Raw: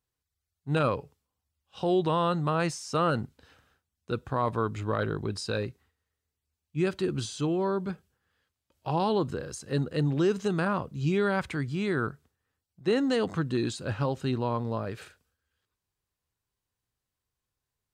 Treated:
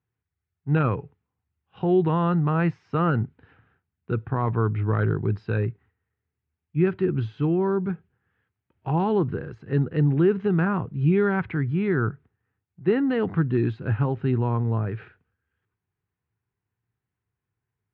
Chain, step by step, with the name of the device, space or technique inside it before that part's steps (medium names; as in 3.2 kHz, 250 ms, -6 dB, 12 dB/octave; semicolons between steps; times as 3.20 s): bass cabinet (cabinet simulation 70–2300 Hz, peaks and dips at 110 Hz +9 dB, 170 Hz +5 dB, 390 Hz +3 dB, 570 Hz -10 dB, 1.1 kHz -4 dB); trim +3.5 dB